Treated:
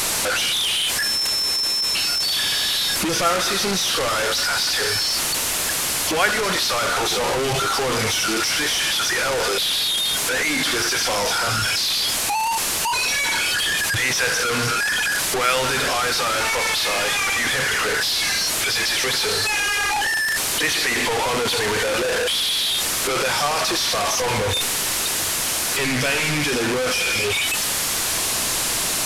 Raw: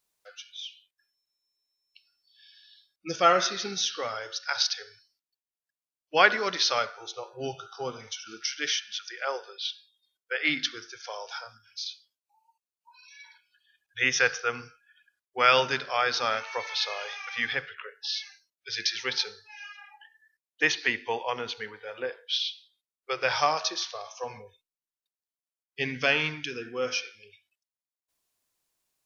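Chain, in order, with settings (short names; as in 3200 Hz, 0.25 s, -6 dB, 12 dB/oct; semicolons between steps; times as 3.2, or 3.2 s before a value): delta modulation 64 kbps, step -15 dBFS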